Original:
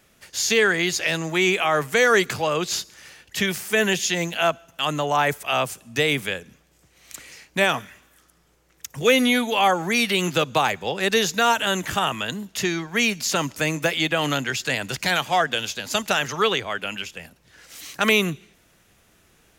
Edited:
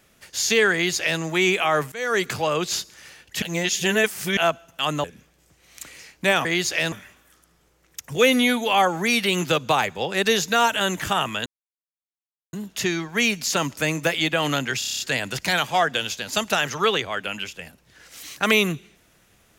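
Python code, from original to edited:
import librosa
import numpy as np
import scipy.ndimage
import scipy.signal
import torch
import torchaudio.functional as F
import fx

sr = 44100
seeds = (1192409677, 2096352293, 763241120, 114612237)

y = fx.edit(x, sr, fx.duplicate(start_s=0.73, length_s=0.47, to_s=7.78),
    fx.fade_in_from(start_s=1.92, length_s=0.42, floor_db=-22.0),
    fx.reverse_span(start_s=3.42, length_s=0.95),
    fx.cut(start_s=5.04, length_s=1.33),
    fx.insert_silence(at_s=12.32, length_s=1.07),
    fx.stutter(start_s=14.58, slice_s=0.03, count=8), tone=tone)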